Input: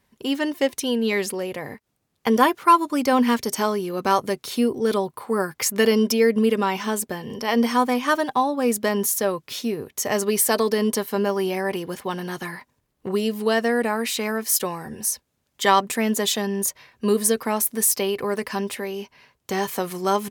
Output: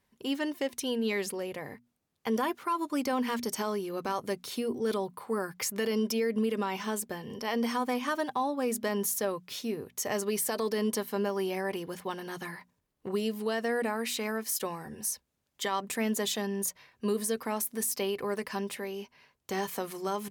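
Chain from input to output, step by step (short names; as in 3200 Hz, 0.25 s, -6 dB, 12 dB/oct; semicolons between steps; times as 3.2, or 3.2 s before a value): limiter -13.5 dBFS, peak gain reduction 10 dB; notches 60/120/180/240 Hz; gain -7.5 dB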